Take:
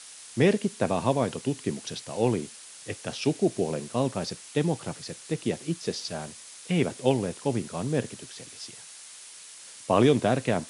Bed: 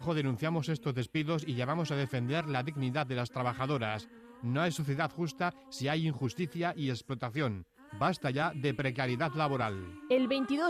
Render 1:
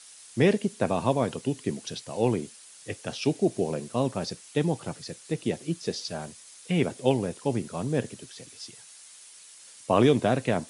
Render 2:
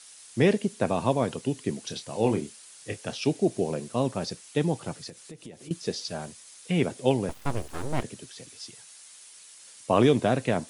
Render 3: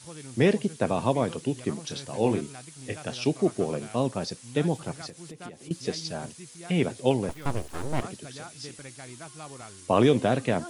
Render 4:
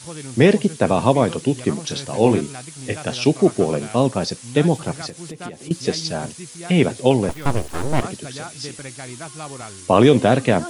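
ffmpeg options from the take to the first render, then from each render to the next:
ffmpeg -i in.wav -af "afftdn=noise_reduction=6:noise_floor=-47" out.wav
ffmpeg -i in.wav -filter_complex "[0:a]asettb=1/sr,asplit=3[link_01][link_02][link_03];[link_01]atrim=end=1.844[link_04];[link_02]atrim=start=1.84:end=3.11,asetpts=PTS-STARTPTS,afade=type=in:duration=0.004:curve=qsin,afade=type=out:start_time=1.266:duration=0.004:curve=qsin,asplit=2[link_05][link_06];[link_06]adelay=28,volume=-8.5dB[link_07];[link_05][link_07]amix=inputs=2:normalize=0,atrim=end_sample=56007[link_08];[link_03]atrim=start=3.106[link_09];[link_04][link_08]acrossfade=duration=0.004:curve1=hsin:curve2=qsin[link_10];[link_10][link_09]acrossfade=duration=0.004:curve1=qsin:curve2=hsin,asettb=1/sr,asplit=3[link_11][link_12][link_13];[link_11]atrim=end=5.094[link_14];[link_12]atrim=start=5.09:end=5.71,asetpts=PTS-STARTPTS,afade=type=in:duration=0.004:curve=qsin,afade=type=out:start_time=0.616:duration=0.004:curve=qsin,acompressor=threshold=-41dB:ratio=5:attack=3.2:release=140:knee=1:detection=peak[link_15];[link_13]atrim=start=5.706[link_16];[link_14][link_15]acrossfade=duration=0.004:curve1=hsin:curve2=qsin[link_17];[link_17][link_16]acrossfade=duration=0.004:curve1=qsin:curve2=hsin,asettb=1/sr,asplit=3[link_18][link_19][link_20];[link_18]atrim=end=7.294[link_21];[link_19]atrim=start=7.29:end=8.03,asetpts=PTS-STARTPTS,afade=type=in:duration=0.004:curve=qsin,afade=type=out:start_time=0.736:duration=0.004:curve=qsin,aeval=exprs='abs(val(0))':channel_layout=same[link_22];[link_20]atrim=start=8.026[link_23];[link_21][link_22]acrossfade=duration=0.004:curve1=hsin:curve2=qsin[link_24];[link_24][link_23]acrossfade=duration=0.004:curve1=qsin:curve2=hsin" out.wav
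ffmpeg -i in.wav -i bed.wav -filter_complex "[1:a]volume=-12dB[link_01];[0:a][link_01]amix=inputs=2:normalize=0" out.wav
ffmpeg -i in.wav -af "volume=9dB,alimiter=limit=-2dB:level=0:latency=1" out.wav

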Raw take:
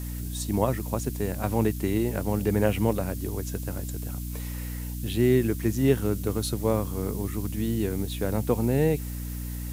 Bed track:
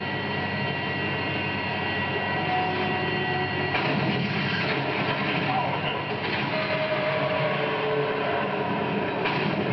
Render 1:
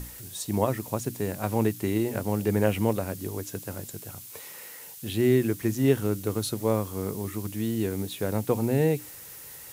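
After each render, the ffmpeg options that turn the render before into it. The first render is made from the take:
ffmpeg -i in.wav -af "bandreject=frequency=60:width_type=h:width=6,bandreject=frequency=120:width_type=h:width=6,bandreject=frequency=180:width_type=h:width=6,bandreject=frequency=240:width_type=h:width=6,bandreject=frequency=300:width_type=h:width=6" out.wav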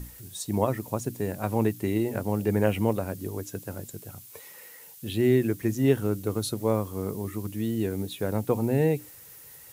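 ffmpeg -i in.wav -af "afftdn=noise_reduction=6:noise_floor=-44" out.wav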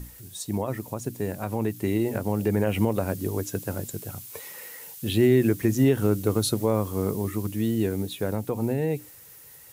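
ffmpeg -i in.wav -af "alimiter=limit=-16.5dB:level=0:latency=1:release=103,dynaudnorm=framelen=230:gausssize=21:maxgain=6dB" out.wav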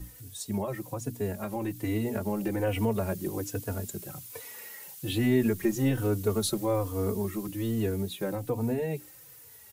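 ffmpeg -i in.wav -filter_complex "[0:a]acrossover=split=200[link_01][link_02];[link_01]asoftclip=type=hard:threshold=-29dB[link_03];[link_03][link_02]amix=inputs=2:normalize=0,asplit=2[link_04][link_05];[link_05]adelay=3.4,afreqshift=-1.2[link_06];[link_04][link_06]amix=inputs=2:normalize=1" out.wav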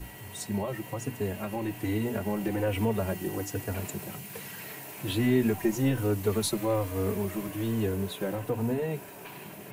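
ffmpeg -i in.wav -i bed.wav -filter_complex "[1:a]volume=-19.5dB[link_01];[0:a][link_01]amix=inputs=2:normalize=0" out.wav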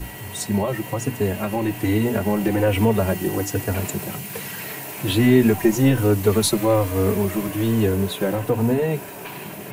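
ffmpeg -i in.wav -af "volume=9.5dB" out.wav

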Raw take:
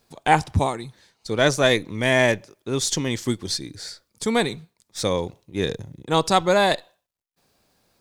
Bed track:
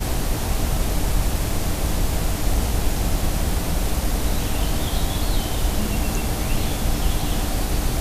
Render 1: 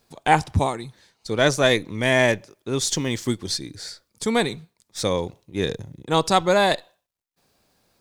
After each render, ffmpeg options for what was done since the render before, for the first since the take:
ffmpeg -i in.wav -filter_complex "[0:a]asettb=1/sr,asplit=3[link_01][link_02][link_03];[link_01]atrim=end=2.884[link_04];[link_02]atrim=start=2.88:end=3.34,asetpts=PTS-STARTPTS,afade=type=in:duration=0.004:curve=qsin,afade=type=out:start_time=0.456:duration=0.004:curve=qsin,aeval=exprs='val(0)*gte(abs(val(0)),0.00531)':channel_layout=same[link_05];[link_03]atrim=start=3.336[link_06];[link_04][link_05]acrossfade=duration=0.004:curve1=hsin:curve2=qsin[link_07];[link_07][link_06]acrossfade=duration=0.004:curve1=qsin:curve2=hsin" out.wav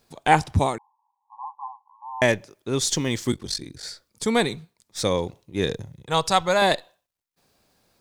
ffmpeg -i in.wav -filter_complex "[0:a]asettb=1/sr,asplit=3[link_01][link_02][link_03];[link_01]atrim=end=0.784[link_04];[link_02]atrim=start=0.78:end=2.22,asetpts=PTS-STARTPTS,afade=type=in:duration=0.004:curve=qsin,afade=type=out:start_time=1.436:duration=0.004:curve=qsin,asuperpass=centerf=930:order=20:qfactor=2.8[link_05];[link_03]atrim=start=2.216[link_06];[link_04][link_05]acrossfade=duration=0.004:curve1=hsin:curve2=qsin[link_07];[link_07][link_06]acrossfade=duration=0.004:curve1=qsin:curve2=hsin,asplit=3[link_08][link_09][link_10];[link_08]afade=type=out:start_time=3.31:duration=0.02[link_11];[link_09]aeval=exprs='val(0)*sin(2*PI*23*n/s)':channel_layout=same,afade=type=in:start_time=3.31:duration=0.02,afade=type=out:start_time=3.82:duration=0.02[link_12];[link_10]afade=type=in:start_time=3.82:duration=0.02[link_13];[link_11][link_12][link_13]amix=inputs=3:normalize=0,asettb=1/sr,asplit=3[link_14][link_15][link_16];[link_14]atrim=end=5.874[link_17];[link_15]atrim=start=5.87:end=6.62,asetpts=PTS-STARTPTS,afade=type=in:duration=0.004:curve=qsin,afade=type=out:start_time=0.746:duration=0.004:curve=qsin,equalizer=frequency=290:width=1.5:gain=-13[link_18];[link_16]atrim=start=6.616[link_19];[link_17][link_18]acrossfade=duration=0.004:curve1=hsin:curve2=qsin[link_20];[link_20][link_19]acrossfade=duration=0.004:curve1=qsin:curve2=hsin" out.wav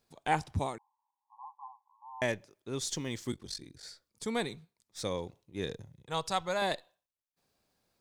ffmpeg -i in.wav -af "volume=-12dB" out.wav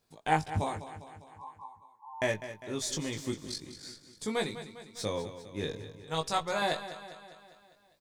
ffmpeg -i in.wav -filter_complex "[0:a]asplit=2[link_01][link_02];[link_02]adelay=19,volume=-4dB[link_03];[link_01][link_03]amix=inputs=2:normalize=0,aecho=1:1:201|402|603|804|1005|1206:0.237|0.135|0.077|0.0439|0.025|0.0143" out.wav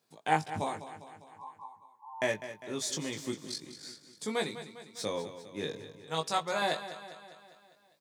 ffmpeg -i in.wav -af "highpass=frequency=120:width=0.5412,highpass=frequency=120:width=1.3066,lowshelf=frequency=200:gain=-4" out.wav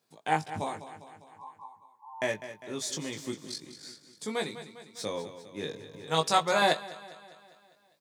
ffmpeg -i in.wav -filter_complex "[0:a]asplit=3[link_01][link_02][link_03];[link_01]afade=type=out:start_time=5.92:duration=0.02[link_04];[link_02]acontrast=64,afade=type=in:start_time=5.92:duration=0.02,afade=type=out:start_time=6.72:duration=0.02[link_05];[link_03]afade=type=in:start_time=6.72:duration=0.02[link_06];[link_04][link_05][link_06]amix=inputs=3:normalize=0" out.wav

